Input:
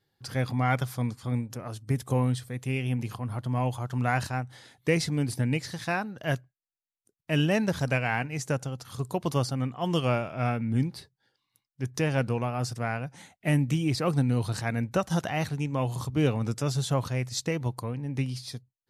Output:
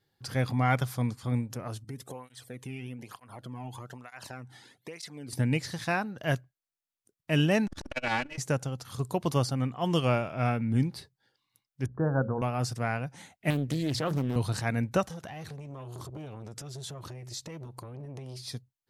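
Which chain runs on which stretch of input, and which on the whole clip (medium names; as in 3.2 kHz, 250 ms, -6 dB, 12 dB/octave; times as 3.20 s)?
1.84–5.33 s: compression 12:1, threshold -32 dBFS + cancelling through-zero flanger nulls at 1.1 Hz, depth 2 ms
7.67–8.38 s: comb filter that takes the minimum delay 3.5 ms + low-pass 9.5 kHz + transformer saturation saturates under 630 Hz
11.86–12.42 s: steep low-pass 1.6 kHz 96 dB/octave + hum notches 60/120/180/240/300/360/420/480/540 Hz
13.50–14.36 s: hum notches 60/120/180/240 Hz + compression 4:1, threshold -25 dBFS + loudspeaker Doppler distortion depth 0.53 ms
15.06–18.49 s: compression 12:1, threshold -34 dBFS + transformer saturation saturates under 860 Hz
whole clip: none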